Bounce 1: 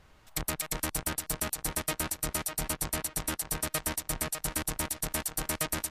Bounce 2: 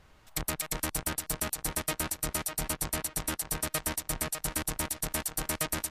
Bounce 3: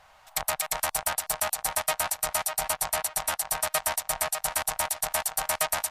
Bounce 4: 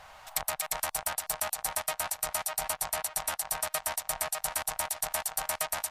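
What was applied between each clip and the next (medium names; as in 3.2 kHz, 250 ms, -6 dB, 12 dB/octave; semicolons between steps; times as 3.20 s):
no audible change
resonant low shelf 500 Hz -12.5 dB, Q 3; trim +4.5 dB
compression 6:1, threshold -34 dBFS, peak gain reduction 12.5 dB; trim +5.5 dB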